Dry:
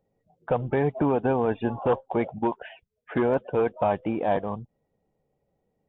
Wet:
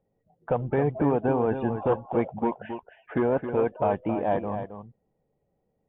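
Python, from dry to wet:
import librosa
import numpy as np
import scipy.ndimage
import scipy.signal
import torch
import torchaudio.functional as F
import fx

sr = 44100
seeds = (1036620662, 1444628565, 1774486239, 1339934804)

p1 = fx.air_absorb(x, sr, metres=360.0)
y = p1 + fx.echo_single(p1, sr, ms=269, db=-9.0, dry=0)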